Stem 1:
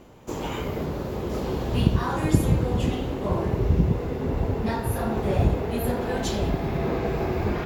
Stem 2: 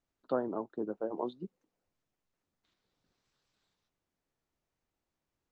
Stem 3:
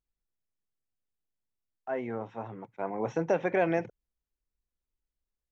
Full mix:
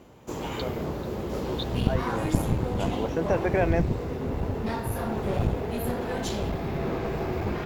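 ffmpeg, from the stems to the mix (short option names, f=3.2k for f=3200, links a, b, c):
-filter_complex "[0:a]highpass=45,aeval=exprs='clip(val(0),-1,0.0501)':c=same,volume=-2dB[a];[1:a]aexciter=amount=15.1:drive=7.2:freq=2.4k,adelay=300,volume=-3.5dB[b];[2:a]volume=1.5dB[c];[a][b][c]amix=inputs=3:normalize=0"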